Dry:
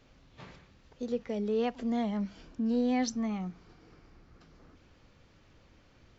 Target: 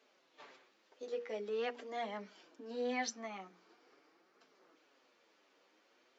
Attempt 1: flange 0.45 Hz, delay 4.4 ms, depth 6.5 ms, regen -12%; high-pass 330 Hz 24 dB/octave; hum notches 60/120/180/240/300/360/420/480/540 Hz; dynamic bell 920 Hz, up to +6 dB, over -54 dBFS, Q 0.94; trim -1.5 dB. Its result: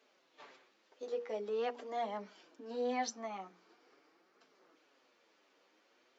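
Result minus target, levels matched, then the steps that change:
2 kHz band -5.0 dB
change: dynamic bell 1.9 kHz, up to +6 dB, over -54 dBFS, Q 0.94

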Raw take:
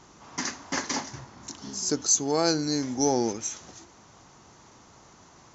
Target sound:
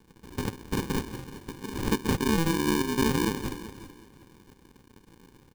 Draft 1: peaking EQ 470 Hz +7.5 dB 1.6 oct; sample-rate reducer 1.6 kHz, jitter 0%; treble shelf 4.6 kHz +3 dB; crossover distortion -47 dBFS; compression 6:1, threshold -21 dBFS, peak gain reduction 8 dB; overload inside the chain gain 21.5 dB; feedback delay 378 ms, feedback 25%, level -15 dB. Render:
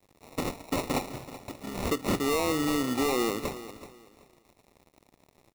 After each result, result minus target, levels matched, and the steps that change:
sample-rate reducer: distortion -25 dB; overload inside the chain: distortion +19 dB; crossover distortion: distortion +7 dB
change: sample-rate reducer 660 Hz, jitter 0%; change: overload inside the chain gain 15 dB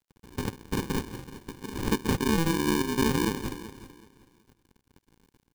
crossover distortion: distortion +7 dB
change: crossover distortion -55.5 dBFS

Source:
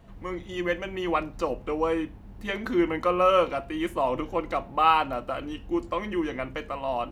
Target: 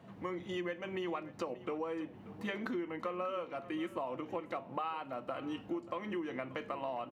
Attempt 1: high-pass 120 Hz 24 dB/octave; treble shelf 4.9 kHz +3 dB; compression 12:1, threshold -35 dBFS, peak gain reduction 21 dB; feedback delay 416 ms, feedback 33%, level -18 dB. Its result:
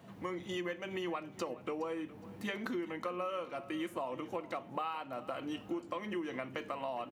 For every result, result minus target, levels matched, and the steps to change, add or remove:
8 kHz band +7.0 dB; echo 170 ms early
change: treble shelf 4.9 kHz -8 dB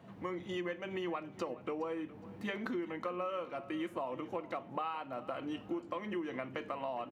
echo 170 ms early
change: feedback delay 586 ms, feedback 33%, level -18 dB

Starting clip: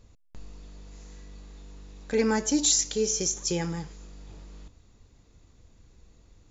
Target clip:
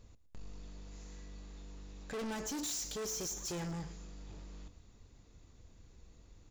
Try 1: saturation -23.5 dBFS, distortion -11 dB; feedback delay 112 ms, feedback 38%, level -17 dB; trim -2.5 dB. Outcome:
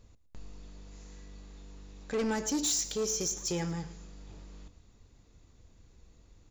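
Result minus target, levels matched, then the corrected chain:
saturation: distortion -8 dB
saturation -35 dBFS, distortion -3 dB; feedback delay 112 ms, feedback 38%, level -17 dB; trim -2.5 dB

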